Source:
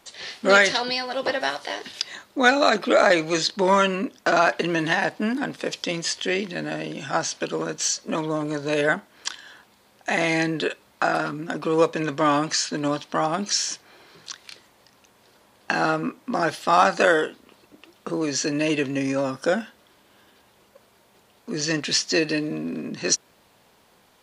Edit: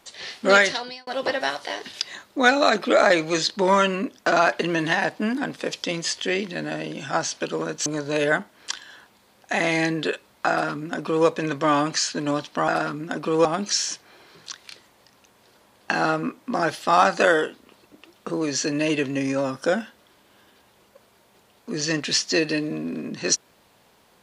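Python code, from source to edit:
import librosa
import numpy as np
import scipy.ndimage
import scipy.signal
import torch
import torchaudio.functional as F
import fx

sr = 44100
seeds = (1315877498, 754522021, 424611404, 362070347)

y = fx.edit(x, sr, fx.fade_out_span(start_s=0.57, length_s=0.5),
    fx.cut(start_s=7.86, length_s=0.57),
    fx.duplicate(start_s=11.07, length_s=0.77, to_s=13.25), tone=tone)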